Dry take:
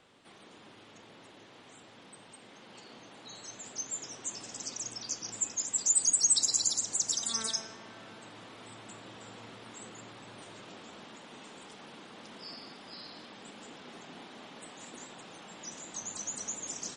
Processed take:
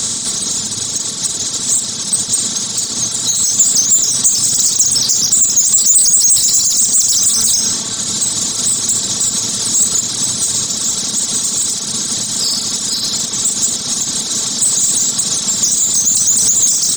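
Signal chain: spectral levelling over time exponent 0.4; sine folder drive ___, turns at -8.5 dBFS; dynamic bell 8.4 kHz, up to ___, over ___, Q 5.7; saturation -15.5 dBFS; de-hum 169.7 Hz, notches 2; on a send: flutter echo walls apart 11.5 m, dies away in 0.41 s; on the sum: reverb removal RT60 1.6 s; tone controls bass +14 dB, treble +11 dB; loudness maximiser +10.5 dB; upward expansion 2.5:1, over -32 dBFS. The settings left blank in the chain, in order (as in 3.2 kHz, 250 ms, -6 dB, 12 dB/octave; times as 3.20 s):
7 dB, +3 dB, -29 dBFS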